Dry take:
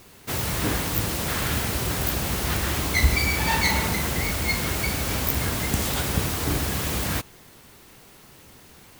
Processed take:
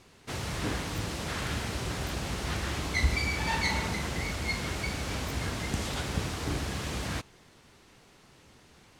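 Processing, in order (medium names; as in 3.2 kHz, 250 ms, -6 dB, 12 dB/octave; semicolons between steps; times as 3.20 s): low-pass 7.1 kHz 12 dB/octave; trim -6.5 dB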